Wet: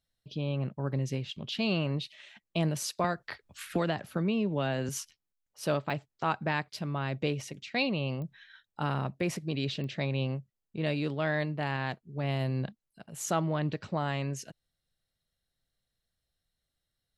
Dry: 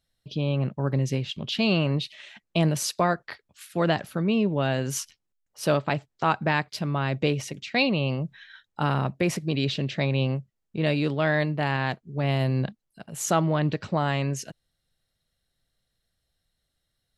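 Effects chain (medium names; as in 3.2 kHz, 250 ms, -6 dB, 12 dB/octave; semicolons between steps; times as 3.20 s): clicks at 5.90/8.22/9.84 s, -24 dBFS; 3.04–4.89 s: three bands compressed up and down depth 100%; trim -6.5 dB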